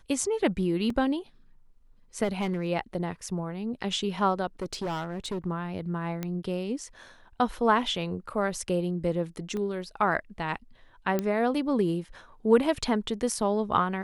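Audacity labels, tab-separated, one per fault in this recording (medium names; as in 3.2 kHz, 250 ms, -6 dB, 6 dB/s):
0.900000	0.900000	dropout 3 ms
2.230000	2.680000	clipped -23 dBFS
4.620000	5.470000	clipped -28 dBFS
6.230000	6.230000	pop -18 dBFS
9.570000	9.570000	pop -23 dBFS
11.190000	11.190000	pop -14 dBFS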